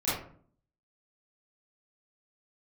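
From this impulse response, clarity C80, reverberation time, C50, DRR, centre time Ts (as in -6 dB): 6.5 dB, 0.50 s, 0.5 dB, -12.5 dB, 57 ms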